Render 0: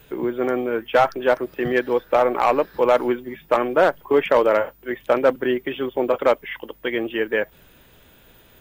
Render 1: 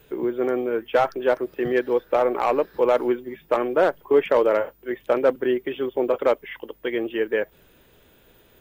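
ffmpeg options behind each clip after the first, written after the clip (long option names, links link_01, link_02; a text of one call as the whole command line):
ffmpeg -i in.wav -af "equalizer=frequency=410:width=1.6:gain=5.5,volume=-5dB" out.wav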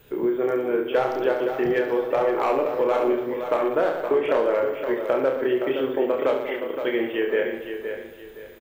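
ffmpeg -i in.wav -filter_complex "[0:a]asplit=2[link_01][link_02];[link_02]aecho=0:1:30|69|119.7|185.6|271.3:0.631|0.398|0.251|0.158|0.1[link_03];[link_01][link_03]amix=inputs=2:normalize=0,acompressor=threshold=-18dB:ratio=6,asplit=2[link_04][link_05];[link_05]aecho=0:1:518|1036|1554|2072:0.398|0.119|0.0358|0.0107[link_06];[link_04][link_06]amix=inputs=2:normalize=0" out.wav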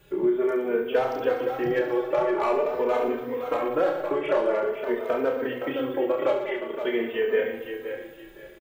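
ffmpeg -i in.wav -filter_complex "[0:a]asplit=2[link_01][link_02];[link_02]adelay=3.1,afreqshift=0.47[link_03];[link_01][link_03]amix=inputs=2:normalize=1,volume=1dB" out.wav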